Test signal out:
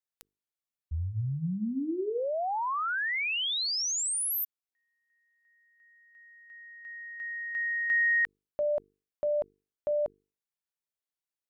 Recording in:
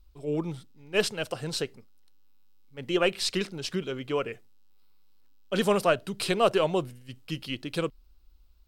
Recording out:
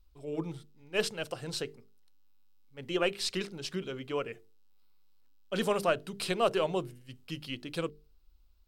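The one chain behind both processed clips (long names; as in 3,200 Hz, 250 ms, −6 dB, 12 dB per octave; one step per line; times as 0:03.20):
mains-hum notches 50/100/150/200/250/300/350/400/450 Hz
level −4.5 dB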